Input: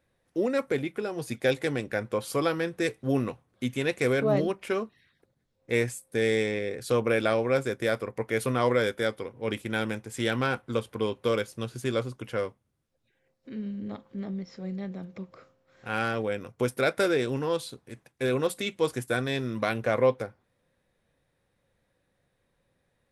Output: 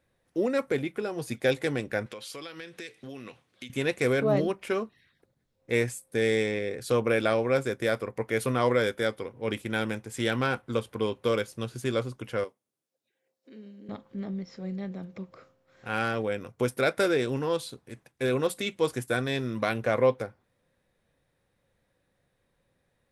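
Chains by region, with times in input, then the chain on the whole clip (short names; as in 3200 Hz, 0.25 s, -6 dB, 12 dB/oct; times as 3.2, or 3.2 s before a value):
2.06–3.7 weighting filter D + compressor 5:1, threshold -39 dBFS
12.44–13.89 HPF 400 Hz + bell 1500 Hz -8.5 dB 2.8 oct
whole clip: dry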